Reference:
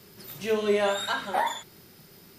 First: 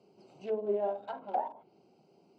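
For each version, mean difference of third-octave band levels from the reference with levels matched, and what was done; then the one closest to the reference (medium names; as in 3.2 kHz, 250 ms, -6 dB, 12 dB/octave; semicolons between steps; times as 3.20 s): 11.5 dB: local Wiener filter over 25 samples; low-pass that closes with the level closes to 690 Hz, closed at -26.5 dBFS; cabinet simulation 260–8500 Hz, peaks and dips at 750 Hz +8 dB, 1.2 kHz -7 dB, 1.9 kHz -5 dB, 2.9 kHz +5 dB, 5.1 kHz +8 dB, 7.6 kHz +6 dB; trim -5.5 dB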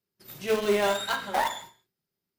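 8.0 dB: gate -44 dBFS, range -32 dB; in parallel at -8.5 dB: bit crusher 4-bit; on the sum: gated-style reverb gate 250 ms falling, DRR 11.5 dB; trim -2.5 dB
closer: second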